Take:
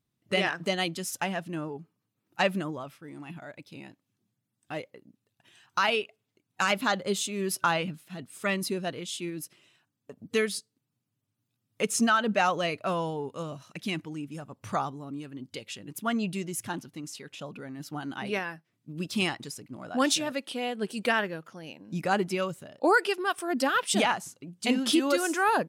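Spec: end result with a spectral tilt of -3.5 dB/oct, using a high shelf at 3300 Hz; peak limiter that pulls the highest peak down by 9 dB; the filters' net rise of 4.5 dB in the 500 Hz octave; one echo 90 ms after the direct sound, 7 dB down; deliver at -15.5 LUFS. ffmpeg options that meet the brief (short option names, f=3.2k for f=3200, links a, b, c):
-af "equalizer=f=500:t=o:g=5.5,highshelf=f=3.3k:g=4,alimiter=limit=-18.5dB:level=0:latency=1,aecho=1:1:90:0.447,volume=14.5dB"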